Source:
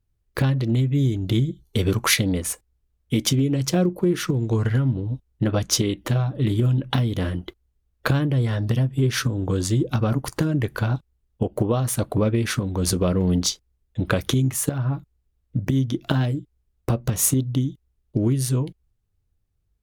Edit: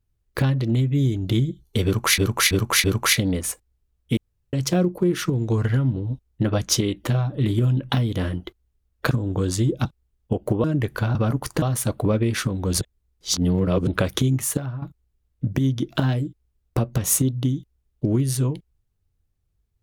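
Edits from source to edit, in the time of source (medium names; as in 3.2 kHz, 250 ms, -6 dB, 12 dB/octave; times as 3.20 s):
1.85–2.18 s: loop, 4 plays
3.18–3.54 s: room tone
8.12–9.23 s: delete
9.97–10.44 s: swap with 10.95–11.74 s
12.93–13.99 s: reverse
14.65–14.94 s: fade out, to -13 dB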